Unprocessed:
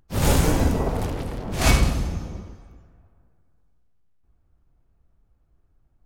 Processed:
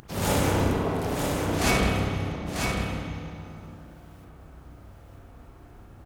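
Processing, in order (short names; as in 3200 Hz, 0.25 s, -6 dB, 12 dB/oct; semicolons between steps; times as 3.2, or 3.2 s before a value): HPF 150 Hz 6 dB/oct; upward compressor, threshold -27 dBFS; echo 0.944 s -5 dB; reverb RT60 1.9 s, pre-delay 31 ms, DRR -1 dB; gain -4 dB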